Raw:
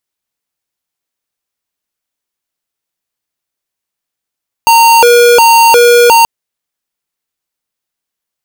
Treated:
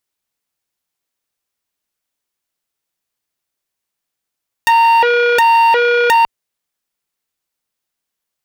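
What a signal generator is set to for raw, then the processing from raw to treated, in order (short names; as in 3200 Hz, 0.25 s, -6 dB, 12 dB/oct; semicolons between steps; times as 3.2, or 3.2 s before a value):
siren hi-lo 479–921 Hz 1.4/s square -4.5 dBFS 1.58 s
core saturation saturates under 1300 Hz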